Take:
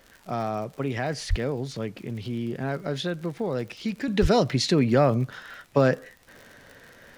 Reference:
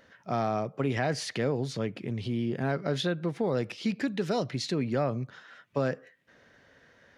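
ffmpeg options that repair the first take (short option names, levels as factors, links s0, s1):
-filter_complex "[0:a]adeclick=t=4,asplit=3[s0][s1][s2];[s0]afade=t=out:st=1.29:d=0.02[s3];[s1]highpass=f=140:w=0.5412,highpass=f=140:w=1.3066,afade=t=in:st=1.29:d=0.02,afade=t=out:st=1.41:d=0.02[s4];[s2]afade=t=in:st=1.41:d=0.02[s5];[s3][s4][s5]amix=inputs=3:normalize=0,asplit=3[s6][s7][s8];[s6]afade=t=out:st=4.21:d=0.02[s9];[s7]highpass=f=140:w=0.5412,highpass=f=140:w=1.3066,afade=t=in:st=4.21:d=0.02,afade=t=out:st=4.33:d=0.02[s10];[s8]afade=t=in:st=4.33:d=0.02[s11];[s9][s10][s11]amix=inputs=3:normalize=0,agate=range=0.0891:threshold=0.00708,asetnsamples=n=441:p=0,asendcmd='4.08 volume volume -8.5dB',volume=1"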